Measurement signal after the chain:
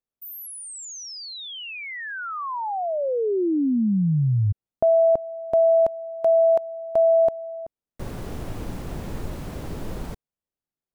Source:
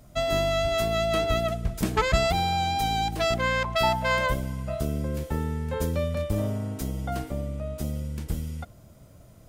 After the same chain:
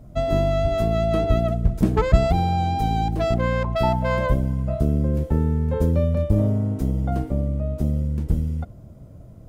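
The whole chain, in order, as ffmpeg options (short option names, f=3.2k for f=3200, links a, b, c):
-af "tiltshelf=f=970:g=9"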